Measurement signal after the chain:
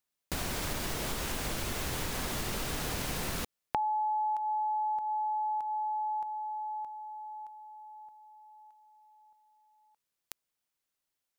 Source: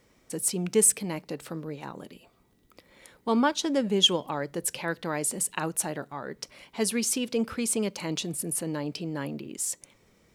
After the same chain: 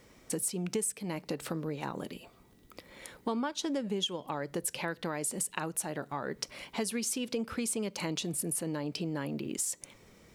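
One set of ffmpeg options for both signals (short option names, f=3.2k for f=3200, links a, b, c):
-af "acompressor=threshold=-35dB:ratio=8,volume=4.5dB"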